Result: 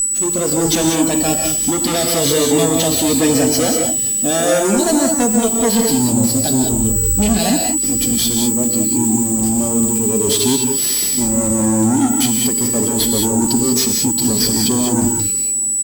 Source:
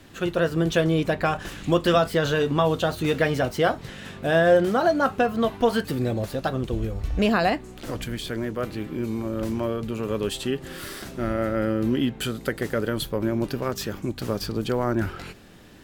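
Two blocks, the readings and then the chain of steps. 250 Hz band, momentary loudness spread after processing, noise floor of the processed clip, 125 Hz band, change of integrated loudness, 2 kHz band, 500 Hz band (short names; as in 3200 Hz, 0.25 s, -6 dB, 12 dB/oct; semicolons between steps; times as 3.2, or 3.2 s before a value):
+10.5 dB, 1 LU, -18 dBFS, +5.0 dB, +10.5 dB, 0.0 dB, +4.0 dB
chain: whine 7900 Hz -35 dBFS; EQ curve 120 Hz 0 dB, 270 Hz +11 dB, 1300 Hz -12 dB, 5000 Hz +13 dB; in parallel at +0.5 dB: negative-ratio compressor -24 dBFS; on the sum: fuzz box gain 25 dB, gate -34 dBFS; spectral noise reduction 8 dB; outdoor echo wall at 110 m, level -27 dB; non-linear reverb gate 0.22 s rising, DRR 2 dB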